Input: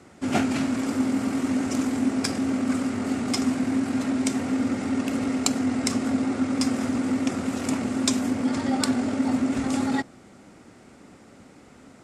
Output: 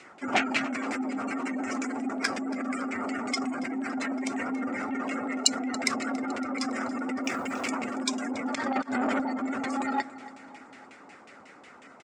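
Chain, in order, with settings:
RIAA equalisation recording
gate on every frequency bin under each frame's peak −20 dB strong
bass and treble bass −2 dB, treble +11 dB
0:08.55–0:09.20: compressor whose output falls as the input rises −31 dBFS, ratio −0.5
auto-filter low-pass saw down 5.5 Hz 860–2,700 Hz
0:07.24–0:07.69: floating-point word with a short mantissa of 4 bits
repeating echo 280 ms, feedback 59%, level −18.5 dB
saturating transformer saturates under 3,000 Hz

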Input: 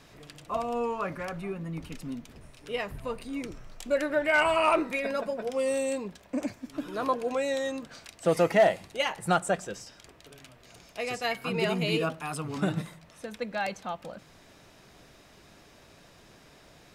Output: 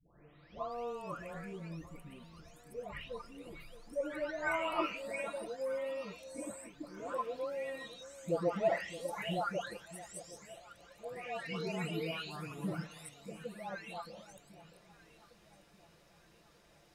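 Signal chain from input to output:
every frequency bin delayed by itself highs late, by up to 712 ms
delay that swaps between a low-pass and a high-pass 619 ms, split 850 Hz, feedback 63%, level −14 dB
level −8.5 dB

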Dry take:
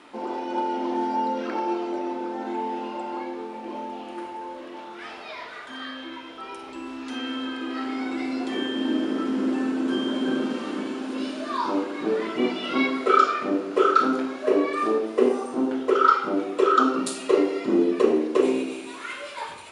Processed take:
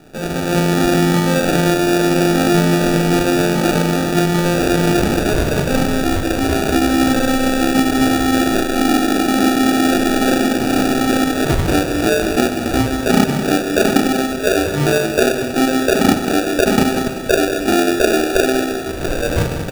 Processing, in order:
camcorder AGC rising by 16 dB per second
decimation without filtering 42×
repeating echo 192 ms, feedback 42%, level −11 dB
level +4.5 dB

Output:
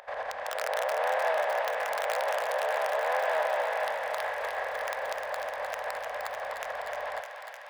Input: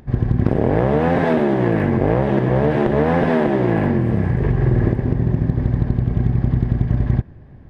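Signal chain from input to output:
compressor on every frequency bin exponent 0.6
in parallel at −4 dB: wrap-around overflow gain 2.5 dB
on the sum: brickwall limiter −6.5 dBFS, peak gain reduction 8 dB
noise gate −20 dBFS, range −7 dB
elliptic high-pass filter 550 Hz, stop band 40 dB
on a send: feedback echo with a high-pass in the loop 304 ms, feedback 84%, high-pass 860 Hz, level −6.5 dB
on the sum: level −6.5 dB

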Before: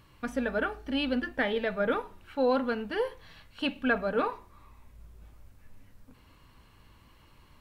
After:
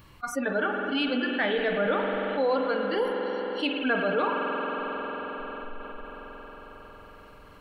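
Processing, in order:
noise reduction from a noise print of the clip's start 25 dB
convolution reverb RT60 4.0 s, pre-delay 45 ms, DRR 3.5 dB
envelope flattener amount 50%

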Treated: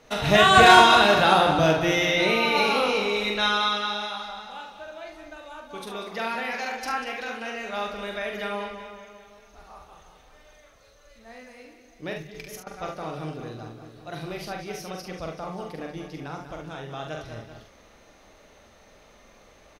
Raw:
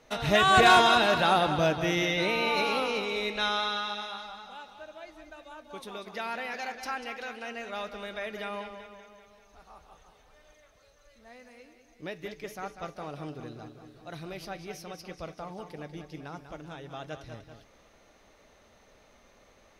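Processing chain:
0:12.16–0:12.67: compressor whose output falls as the input rises −49 dBFS, ratio −1
on a send: ambience of single reflections 44 ms −4 dB, 71 ms −8.5 dB
on the sum: level +4 dB

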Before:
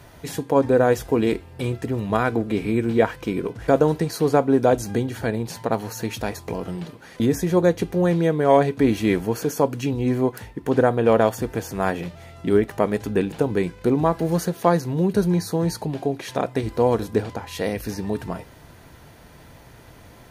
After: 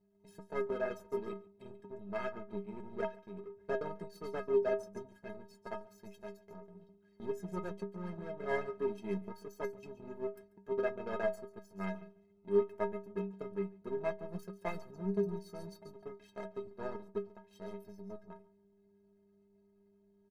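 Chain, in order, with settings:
spectral envelope exaggerated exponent 1.5
in parallel at −9.5 dB: hard clipping −17.5 dBFS, distortion −9 dB
on the sum: hum with harmonics 100 Hz, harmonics 4, −36 dBFS −5 dB per octave
on a send: repeating echo 140 ms, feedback 27%, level −12 dB
on the sum: power curve on the samples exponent 2
stiff-string resonator 190 Hz, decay 0.31 s, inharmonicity 0.03
level +1 dB

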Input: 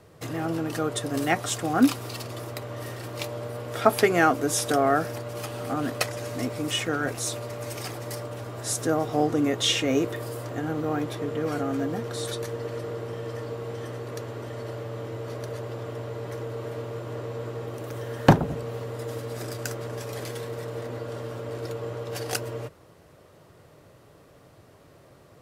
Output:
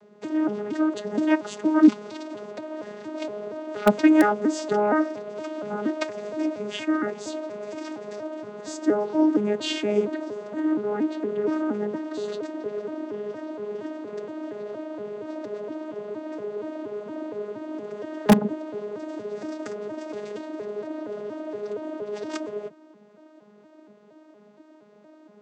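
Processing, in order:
vocoder with an arpeggio as carrier bare fifth, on G#3, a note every 234 ms
in parallel at −8 dB: wrap-around overflow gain 8 dB

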